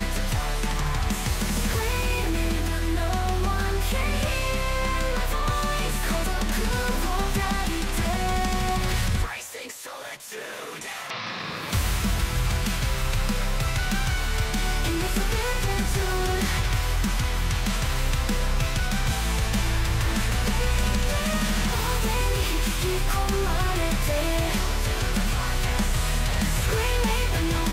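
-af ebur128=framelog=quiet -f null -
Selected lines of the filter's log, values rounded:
Integrated loudness:
  I:         -26.1 LUFS
  Threshold: -36.1 LUFS
Loudness range:
  LRA:         3.1 LU
  Threshold: -46.2 LUFS
  LRA low:   -28.2 LUFS
  LRA high:  -25.1 LUFS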